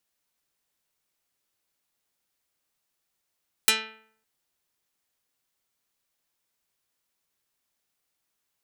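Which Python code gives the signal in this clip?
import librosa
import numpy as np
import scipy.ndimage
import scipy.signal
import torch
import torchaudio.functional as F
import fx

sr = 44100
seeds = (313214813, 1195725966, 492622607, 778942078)

y = fx.pluck(sr, length_s=0.56, note=57, decay_s=0.62, pick=0.41, brightness='dark')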